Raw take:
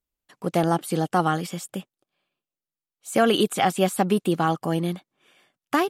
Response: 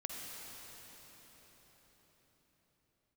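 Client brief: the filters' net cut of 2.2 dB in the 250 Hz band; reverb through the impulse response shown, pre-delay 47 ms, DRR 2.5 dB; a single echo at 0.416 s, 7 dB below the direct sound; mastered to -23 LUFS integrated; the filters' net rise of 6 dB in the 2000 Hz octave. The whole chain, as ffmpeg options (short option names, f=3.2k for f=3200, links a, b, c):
-filter_complex "[0:a]equalizer=f=250:t=o:g=-3.5,equalizer=f=2k:t=o:g=8,aecho=1:1:416:0.447,asplit=2[a][b];[1:a]atrim=start_sample=2205,adelay=47[c];[b][c]afir=irnorm=-1:irlink=0,volume=-2.5dB[d];[a][d]amix=inputs=2:normalize=0,volume=-1.5dB"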